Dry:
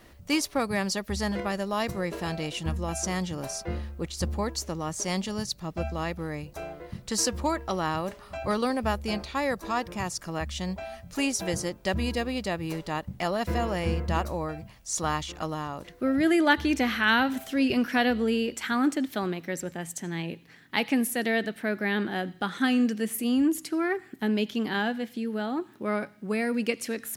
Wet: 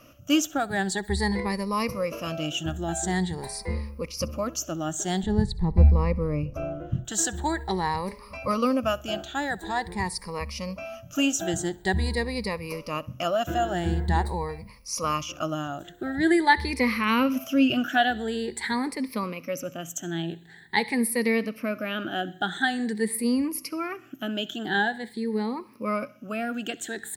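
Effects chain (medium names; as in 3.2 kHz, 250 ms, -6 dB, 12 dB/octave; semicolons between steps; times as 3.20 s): drifting ripple filter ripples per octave 0.9, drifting +0.46 Hz, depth 18 dB; 5.23–7.05 s: tilt EQ -4 dB/octave; feedback delay 65 ms, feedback 39%, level -23 dB; trim -2 dB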